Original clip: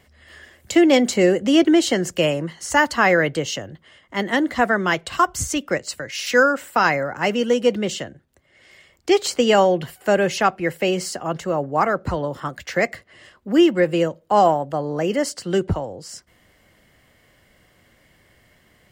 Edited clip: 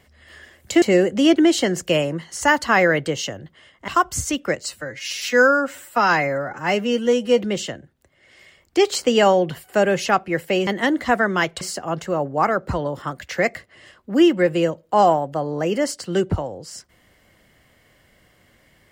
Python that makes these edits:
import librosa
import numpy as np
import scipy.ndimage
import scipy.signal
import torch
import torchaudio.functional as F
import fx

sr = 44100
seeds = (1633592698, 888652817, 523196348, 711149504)

y = fx.edit(x, sr, fx.cut(start_s=0.82, length_s=0.29),
    fx.move(start_s=4.17, length_s=0.94, to_s=10.99),
    fx.stretch_span(start_s=5.89, length_s=1.82, factor=1.5), tone=tone)